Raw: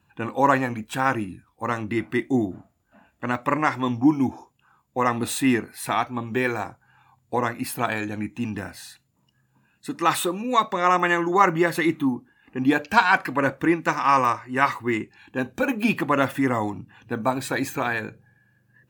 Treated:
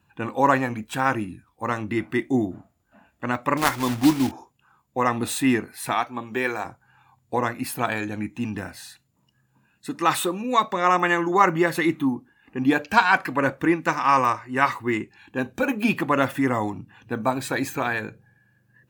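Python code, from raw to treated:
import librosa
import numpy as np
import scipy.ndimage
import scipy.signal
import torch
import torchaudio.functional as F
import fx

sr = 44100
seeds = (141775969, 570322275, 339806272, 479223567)

y = fx.block_float(x, sr, bits=3, at=(3.57, 4.33))
y = fx.highpass(y, sr, hz=310.0, slope=6, at=(5.93, 6.65))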